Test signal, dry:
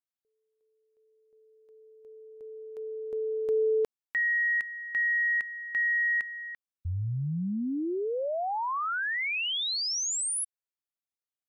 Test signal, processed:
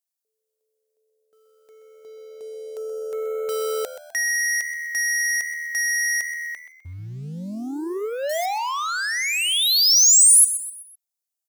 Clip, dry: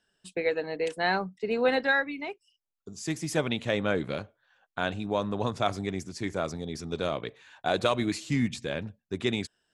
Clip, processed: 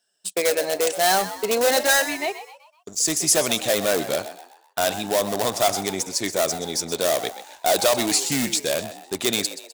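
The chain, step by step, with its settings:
high-pass filter 170 Hz 6 dB per octave
parametric band 660 Hz +8 dB 0.51 octaves
in parallel at −9.5 dB: wrap-around overflow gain 22 dB
on the sum: leveller curve on the samples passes 2
bass and treble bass −5 dB, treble +15 dB
on a send: echo with shifted repeats 127 ms, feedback 42%, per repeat +78 Hz, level −12.5 dB
on the sum: level −3 dB

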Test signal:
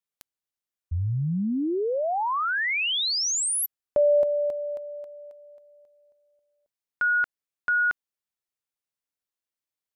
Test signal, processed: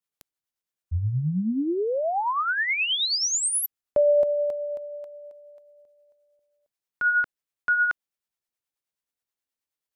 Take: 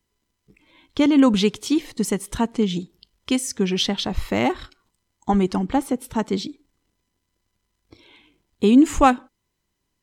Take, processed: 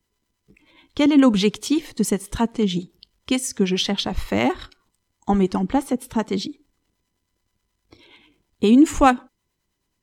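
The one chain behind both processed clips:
two-band tremolo in antiphase 9.4 Hz, depth 50%, crossover 510 Hz
level +3 dB

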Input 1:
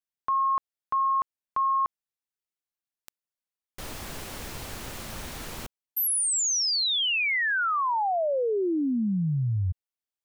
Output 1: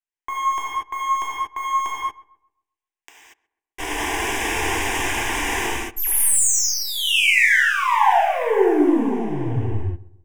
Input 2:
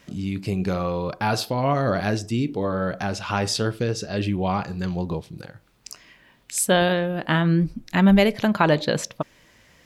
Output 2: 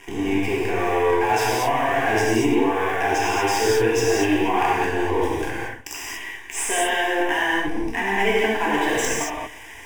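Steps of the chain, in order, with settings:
gain on one half-wave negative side −12 dB
low-pass filter 6,400 Hz 12 dB per octave
low-shelf EQ 300 Hz −11 dB
reversed playback
downward compressor 10 to 1, threshold −36 dBFS
reversed playback
leveller curve on the samples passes 3
phaser with its sweep stopped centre 870 Hz, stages 8
on a send: feedback echo with a low-pass in the loop 132 ms, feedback 39%, low-pass 1,500 Hz, level −19 dB
on the sum: reverb whose tail is shaped and stops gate 260 ms flat, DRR −6 dB
level +8.5 dB

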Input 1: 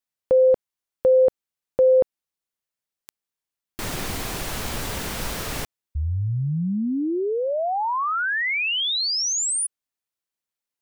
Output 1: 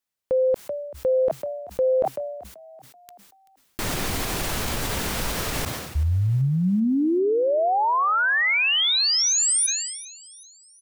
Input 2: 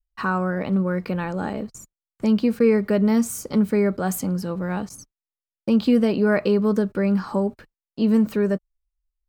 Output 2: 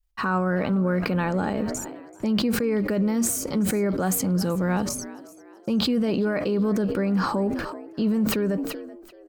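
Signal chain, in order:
brickwall limiter −19.5 dBFS
on a send: echo with shifted repeats 383 ms, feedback 46%, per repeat +64 Hz, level −19 dB
on the sum: level that may fall only so fast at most 45 dB per second
level +3 dB

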